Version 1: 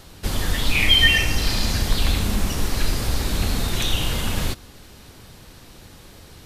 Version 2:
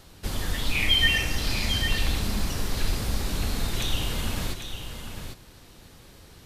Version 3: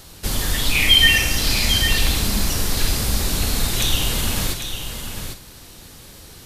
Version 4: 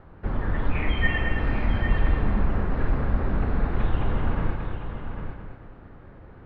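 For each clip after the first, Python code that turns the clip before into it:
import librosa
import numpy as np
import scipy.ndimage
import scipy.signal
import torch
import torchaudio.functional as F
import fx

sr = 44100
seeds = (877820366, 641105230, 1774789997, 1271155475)

y1 = x + 10.0 ** (-8.0 / 20.0) * np.pad(x, (int(799 * sr / 1000.0), 0))[:len(x)]
y1 = F.gain(torch.from_numpy(y1), -6.0).numpy()
y2 = fx.high_shelf(y1, sr, hz=4500.0, db=9.0)
y2 = fx.doubler(y2, sr, ms=50.0, db=-11.0)
y2 = F.gain(torch.from_numpy(y2), 5.5).numpy()
y3 = scipy.signal.sosfilt(scipy.signal.butter(4, 1600.0, 'lowpass', fs=sr, output='sos'), y2)
y3 = fx.echo_feedback(y3, sr, ms=216, feedback_pct=38, wet_db=-6.0)
y3 = F.gain(torch.from_numpy(y3), -2.5).numpy()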